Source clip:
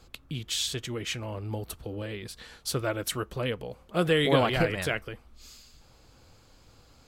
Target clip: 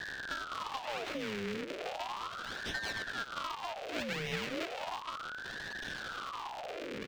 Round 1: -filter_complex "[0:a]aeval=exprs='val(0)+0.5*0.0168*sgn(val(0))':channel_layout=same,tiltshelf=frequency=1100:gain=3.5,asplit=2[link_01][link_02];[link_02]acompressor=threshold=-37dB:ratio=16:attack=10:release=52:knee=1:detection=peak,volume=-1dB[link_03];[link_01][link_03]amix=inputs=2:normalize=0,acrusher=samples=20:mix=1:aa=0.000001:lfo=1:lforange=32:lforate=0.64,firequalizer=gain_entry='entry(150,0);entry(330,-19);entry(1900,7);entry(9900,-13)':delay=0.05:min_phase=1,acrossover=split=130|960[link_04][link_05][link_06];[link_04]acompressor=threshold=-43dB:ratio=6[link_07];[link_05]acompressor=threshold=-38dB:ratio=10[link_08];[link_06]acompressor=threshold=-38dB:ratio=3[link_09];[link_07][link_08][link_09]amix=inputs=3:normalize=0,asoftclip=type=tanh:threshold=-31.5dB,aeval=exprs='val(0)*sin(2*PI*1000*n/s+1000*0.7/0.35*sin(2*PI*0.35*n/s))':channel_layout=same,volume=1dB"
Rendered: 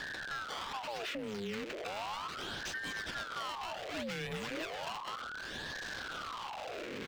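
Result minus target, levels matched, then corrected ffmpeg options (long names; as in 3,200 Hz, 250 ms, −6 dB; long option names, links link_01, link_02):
soft clipping: distortion +9 dB; sample-and-hold swept by an LFO: distortion −9 dB
-filter_complex "[0:a]aeval=exprs='val(0)+0.5*0.0168*sgn(val(0))':channel_layout=same,tiltshelf=frequency=1100:gain=3.5,asplit=2[link_01][link_02];[link_02]acompressor=threshold=-37dB:ratio=16:attack=10:release=52:knee=1:detection=peak,volume=-1dB[link_03];[link_01][link_03]amix=inputs=2:normalize=0,acrusher=samples=76:mix=1:aa=0.000001:lfo=1:lforange=122:lforate=0.64,firequalizer=gain_entry='entry(150,0);entry(330,-19);entry(1900,7);entry(9900,-13)':delay=0.05:min_phase=1,acrossover=split=130|960[link_04][link_05][link_06];[link_04]acompressor=threshold=-43dB:ratio=6[link_07];[link_05]acompressor=threshold=-38dB:ratio=10[link_08];[link_06]acompressor=threshold=-38dB:ratio=3[link_09];[link_07][link_08][link_09]amix=inputs=3:normalize=0,asoftclip=type=tanh:threshold=-24dB,aeval=exprs='val(0)*sin(2*PI*1000*n/s+1000*0.7/0.35*sin(2*PI*0.35*n/s))':channel_layout=same,volume=1dB"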